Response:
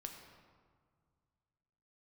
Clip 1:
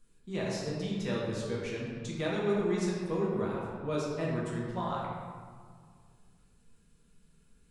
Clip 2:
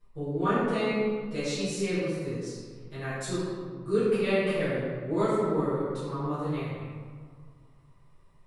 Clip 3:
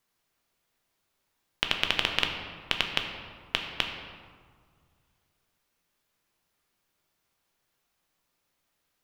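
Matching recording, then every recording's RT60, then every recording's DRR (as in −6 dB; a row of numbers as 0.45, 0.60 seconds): 3; 1.9, 1.9, 1.9 seconds; −5.5, −15.5, 3.0 decibels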